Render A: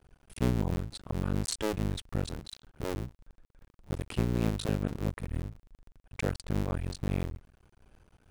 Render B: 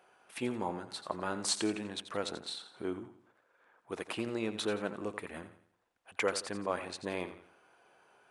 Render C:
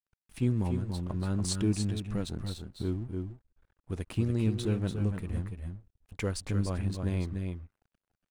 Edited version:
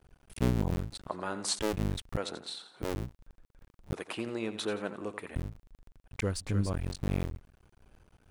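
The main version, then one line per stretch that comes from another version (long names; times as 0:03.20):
A
0:01.08–0:01.59: punch in from B
0:02.17–0:02.82: punch in from B
0:03.94–0:05.35: punch in from B
0:06.22–0:06.73: punch in from C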